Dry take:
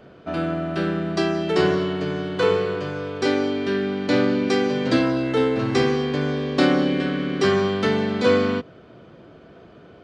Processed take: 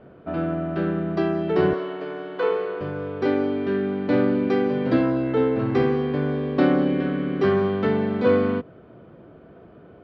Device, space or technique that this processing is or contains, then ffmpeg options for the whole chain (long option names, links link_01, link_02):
phone in a pocket: -filter_complex "[0:a]lowpass=3200,highshelf=frequency=2000:gain=-11,asettb=1/sr,asplit=3[link_01][link_02][link_03];[link_01]atrim=end=1.734[link_04];[link_02]atrim=start=1.73:end=2.81,asetpts=PTS-STARTPTS,afade=type=in:duration=0.004:curve=qsin,afade=type=out:start_time=1.076:duration=0.004:curve=qsin,highpass=430[link_05];[link_03]atrim=start=2.806[link_06];[link_04][link_05]acrossfade=duration=0.004:curve1=hsin:curve2=qsin[link_07];[link_07][link_06]acrossfade=duration=0.004:curve1=qsin:curve2=hsin"